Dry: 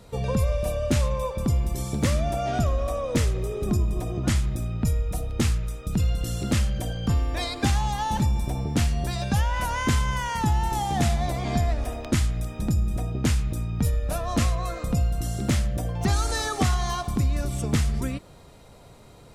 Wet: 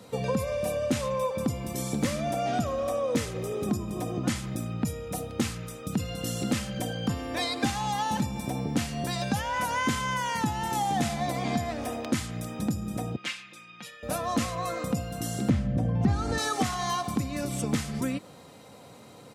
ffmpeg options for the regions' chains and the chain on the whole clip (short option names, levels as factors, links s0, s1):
-filter_complex "[0:a]asettb=1/sr,asplit=3[s0][s1][s2];[s0]atrim=end=13.164[s3];[s1]atrim=start=13.16:end=14.03,asetpts=PTS-STARTPTS,afade=t=in:d=0.004:c=qsin,afade=t=out:st=0.866:d=0.004:c=qsin,bandpass=f=2600:t=q:w=1.6,aecho=1:1:5.7:0.75,atrim=end_sample=38367[s4];[s2]atrim=start=14.026[s5];[s3][s4]acrossfade=d=0.004:c1=hsin:c2=qsin[s6];[s6][s5]acrossfade=d=0.004:c1=qsin:c2=hsin,asettb=1/sr,asplit=3[s7][s8][s9];[s7]atrim=end=15.494[s10];[s8]atrim=start=15.49:end=16.38,asetpts=PTS-STARTPTS,afade=t=in:d=0.004:c=qsin,afade=t=out:st=0.886:d=0.004:c=qsin,aemphasis=mode=reproduction:type=riaa,aeval=exprs='val(0)+0.0562*(sin(2*PI*50*n/s)+sin(2*PI*2*50*n/s)/2+sin(2*PI*3*50*n/s)/3+sin(2*PI*4*50*n/s)/4+sin(2*PI*5*50*n/s)/5)':c=same[s11];[s9]atrim=start=16.376[s12];[s10][s11]acrossfade=d=0.004:c1=hsin:c2=qsin[s13];[s13][s12]acrossfade=d=0.004:c1=qsin:c2=hsin,highpass=f=110:w=0.5412,highpass=f=110:w=1.3066,aecho=1:1:3.9:0.34,acompressor=threshold=0.0398:ratio=2,volume=1.19"